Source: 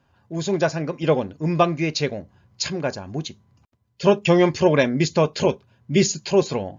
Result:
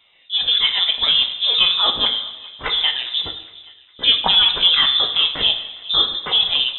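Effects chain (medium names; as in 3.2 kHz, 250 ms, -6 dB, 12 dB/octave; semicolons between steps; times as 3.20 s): sawtooth pitch modulation +5.5 st, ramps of 515 ms; high-pass 210 Hz 12 dB/octave; peaking EQ 1.2 kHz -3 dB 0.31 oct; in parallel at +2 dB: compressor with a negative ratio -26 dBFS, ratio -1; on the sum: frequency inversion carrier 3.8 kHz; thinning echo 410 ms, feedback 49%, high-pass 1 kHz, level -19.5 dB; two-slope reverb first 0.8 s, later 2 s, DRR 5.5 dB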